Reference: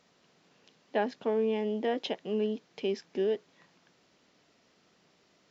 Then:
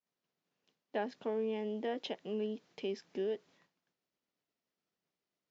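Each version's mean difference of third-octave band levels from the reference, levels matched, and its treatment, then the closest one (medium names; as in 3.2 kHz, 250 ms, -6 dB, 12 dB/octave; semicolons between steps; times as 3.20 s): 1.5 dB: expander -53 dBFS; in parallel at -3 dB: compression, threshold -37 dBFS, peak gain reduction 13.5 dB; on the sum: trim -8.5 dB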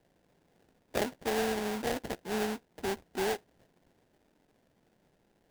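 10.0 dB: low-pass 4.5 kHz 12 dB/octave; sample-rate reducer 1.2 kHz, jitter 20%; trim -2.5 dB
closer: first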